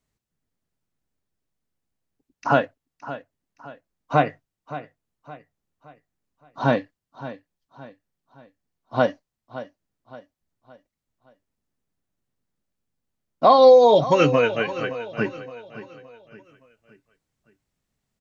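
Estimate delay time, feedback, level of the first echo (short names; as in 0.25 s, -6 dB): 0.568 s, 41%, -14.5 dB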